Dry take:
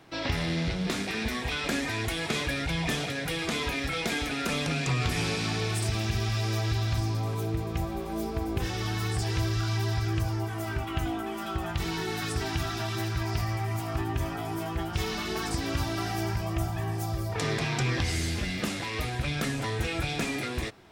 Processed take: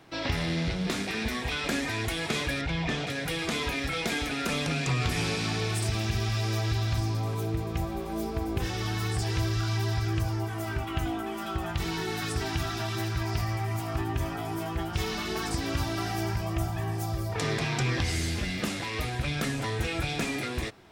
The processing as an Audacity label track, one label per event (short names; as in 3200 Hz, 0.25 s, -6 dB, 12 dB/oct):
2.610000	3.070000	air absorption 100 m